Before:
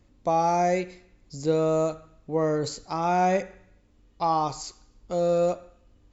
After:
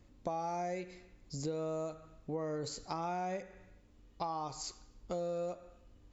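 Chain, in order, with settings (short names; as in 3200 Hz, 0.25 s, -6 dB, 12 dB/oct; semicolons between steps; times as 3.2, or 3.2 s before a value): compressor 6:1, threshold -34 dBFS, peak gain reduction 14.5 dB; gain -2 dB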